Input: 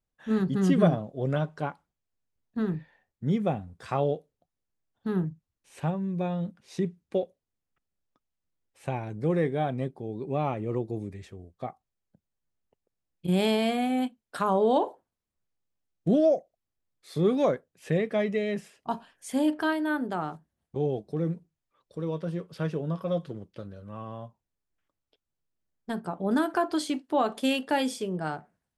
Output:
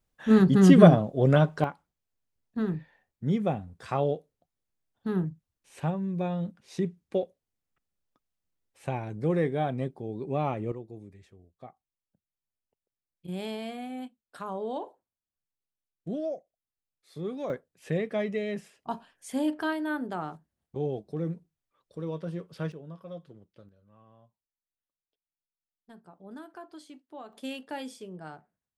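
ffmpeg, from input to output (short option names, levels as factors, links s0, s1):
-af "asetnsamples=n=441:p=0,asendcmd='1.64 volume volume -0.5dB;10.72 volume volume -11dB;17.5 volume volume -3dB;22.72 volume volume -13dB;23.69 volume volume -19dB;27.33 volume volume -11dB',volume=2.24"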